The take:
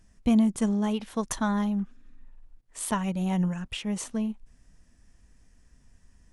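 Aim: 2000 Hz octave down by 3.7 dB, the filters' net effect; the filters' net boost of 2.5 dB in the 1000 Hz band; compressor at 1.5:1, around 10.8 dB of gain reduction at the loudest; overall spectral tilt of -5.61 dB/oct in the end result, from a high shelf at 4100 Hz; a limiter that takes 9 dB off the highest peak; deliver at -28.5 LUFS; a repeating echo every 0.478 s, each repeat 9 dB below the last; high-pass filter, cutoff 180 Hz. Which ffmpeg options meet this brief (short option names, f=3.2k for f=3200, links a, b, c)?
-af "highpass=180,equalizer=f=1k:t=o:g=4.5,equalizer=f=2k:t=o:g=-6,highshelf=f=4.1k:g=-6.5,acompressor=threshold=-51dB:ratio=1.5,alimiter=level_in=8dB:limit=-24dB:level=0:latency=1,volume=-8dB,aecho=1:1:478|956|1434|1912:0.355|0.124|0.0435|0.0152,volume=12.5dB"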